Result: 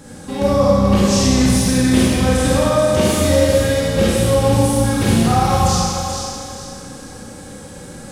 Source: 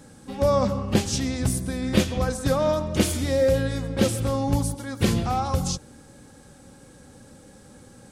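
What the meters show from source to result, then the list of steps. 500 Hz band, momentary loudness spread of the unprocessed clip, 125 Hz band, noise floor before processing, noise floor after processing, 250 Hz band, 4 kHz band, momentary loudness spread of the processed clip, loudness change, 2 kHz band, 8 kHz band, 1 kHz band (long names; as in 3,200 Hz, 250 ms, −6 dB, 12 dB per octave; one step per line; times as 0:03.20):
+8.5 dB, 5 LU, +9.0 dB, −50 dBFS, −35 dBFS, +10.0 dB, +9.5 dB, 20 LU, +9.0 dB, +9.5 dB, +10.0 dB, +10.0 dB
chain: downward compressor, threshold −25 dBFS, peak gain reduction 11.5 dB
feedback echo with a high-pass in the loop 436 ms, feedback 33%, high-pass 620 Hz, level −6 dB
four-comb reverb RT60 1.8 s, combs from 31 ms, DRR −6 dB
level +7 dB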